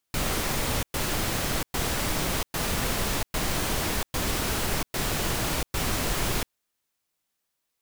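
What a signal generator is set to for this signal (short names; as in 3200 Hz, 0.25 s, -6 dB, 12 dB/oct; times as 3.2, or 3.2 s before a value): noise bursts pink, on 0.69 s, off 0.11 s, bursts 8, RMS -27 dBFS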